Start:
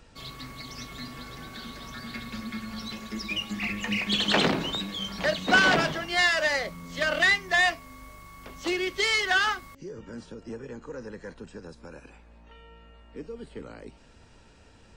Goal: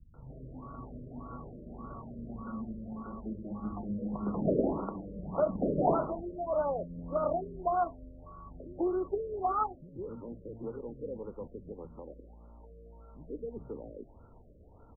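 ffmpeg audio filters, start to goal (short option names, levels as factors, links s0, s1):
-filter_complex "[0:a]acrossover=split=200[s0][s1];[s1]adelay=140[s2];[s0][s2]amix=inputs=2:normalize=0,afftfilt=real='re*lt(b*sr/1024,610*pow(1500/610,0.5+0.5*sin(2*PI*1.7*pts/sr)))':imag='im*lt(b*sr/1024,610*pow(1500/610,0.5+0.5*sin(2*PI*1.7*pts/sr)))':win_size=1024:overlap=0.75"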